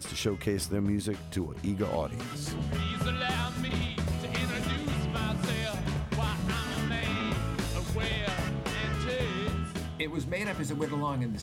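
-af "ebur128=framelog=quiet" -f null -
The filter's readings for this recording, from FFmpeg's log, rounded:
Integrated loudness:
  I:         -31.8 LUFS
  Threshold: -41.8 LUFS
Loudness range:
  LRA:         0.9 LU
  Threshold: -51.7 LUFS
  LRA low:   -32.2 LUFS
  LRA high:  -31.3 LUFS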